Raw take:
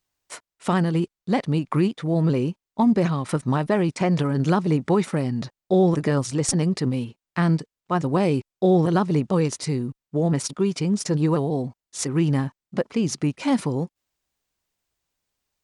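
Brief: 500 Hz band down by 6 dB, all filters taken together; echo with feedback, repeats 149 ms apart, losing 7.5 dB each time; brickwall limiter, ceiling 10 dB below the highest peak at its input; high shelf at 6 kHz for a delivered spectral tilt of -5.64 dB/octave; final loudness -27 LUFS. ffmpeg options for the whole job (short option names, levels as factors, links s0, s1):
-af "equalizer=f=500:t=o:g=-8.5,highshelf=f=6000:g=7,alimiter=limit=0.168:level=0:latency=1,aecho=1:1:149|298|447|596|745:0.422|0.177|0.0744|0.0312|0.0131,volume=0.841"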